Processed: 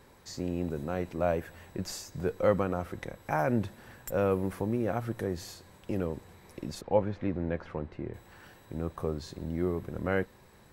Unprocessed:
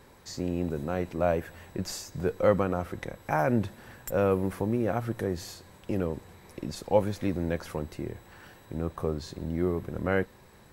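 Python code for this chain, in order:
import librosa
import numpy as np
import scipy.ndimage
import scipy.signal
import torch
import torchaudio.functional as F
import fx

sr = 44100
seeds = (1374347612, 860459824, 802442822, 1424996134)

y = fx.lowpass(x, sr, hz=2400.0, slope=12, at=(6.81, 8.14))
y = y * 10.0 ** (-2.5 / 20.0)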